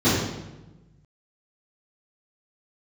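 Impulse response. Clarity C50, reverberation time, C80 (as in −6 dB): −1.0 dB, 1.1 s, 2.5 dB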